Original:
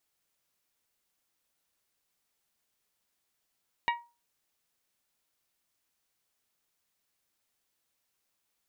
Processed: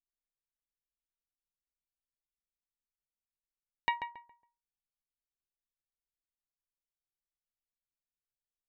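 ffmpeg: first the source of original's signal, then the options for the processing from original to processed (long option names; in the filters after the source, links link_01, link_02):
-f lavfi -i "aevalsrc='0.0708*pow(10,-3*t/0.3)*sin(2*PI*947*t)+0.0473*pow(10,-3*t/0.185)*sin(2*PI*1894*t)+0.0316*pow(10,-3*t/0.163)*sin(2*PI*2272.8*t)+0.0211*pow(10,-3*t/0.139)*sin(2*PI*2841*t)+0.0141*pow(10,-3*t/0.114)*sin(2*PI*3788*t)':duration=0.89:sample_rate=44100"
-filter_complex "[0:a]anlmdn=0.000631,asplit=2[link_01][link_02];[link_02]adelay=138,lowpass=frequency=1900:poles=1,volume=-7dB,asplit=2[link_03][link_04];[link_04]adelay=138,lowpass=frequency=1900:poles=1,volume=0.29,asplit=2[link_05][link_06];[link_06]adelay=138,lowpass=frequency=1900:poles=1,volume=0.29,asplit=2[link_07][link_08];[link_08]adelay=138,lowpass=frequency=1900:poles=1,volume=0.29[link_09];[link_01][link_03][link_05][link_07][link_09]amix=inputs=5:normalize=0"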